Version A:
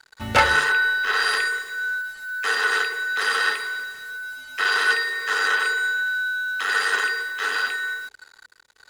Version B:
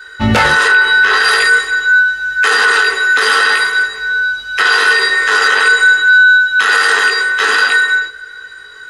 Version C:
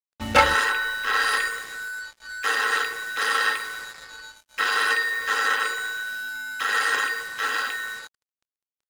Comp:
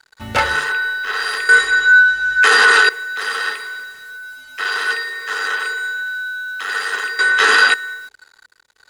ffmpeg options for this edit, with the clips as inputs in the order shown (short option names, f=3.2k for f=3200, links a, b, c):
-filter_complex "[1:a]asplit=2[a][b];[0:a]asplit=3[c][d][e];[c]atrim=end=1.492[f];[a]atrim=start=1.488:end=2.892[g];[d]atrim=start=2.888:end=7.192[h];[b]atrim=start=7.188:end=7.742[i];[e]atrim=start=7.738[j];[f][g]acrossfade=d=0.004:c1=hsin:c2=hsin[k];[k][h]acrossfade=d=0.004:c1=hsin:c2=hsin[l];[l][i]acrossfade=d=0.004:c1=hsin:c2=hsin[m];[m][j]acrossfade=d=0.004:c1=hsin:c2=hsin"